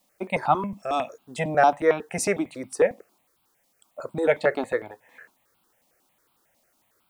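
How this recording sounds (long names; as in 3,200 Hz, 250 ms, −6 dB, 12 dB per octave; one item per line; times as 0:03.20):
a quantiser's noise floor 12 bits, dither triangular
notches that jump at a steady rate 11 Hz 400–1,800 Hz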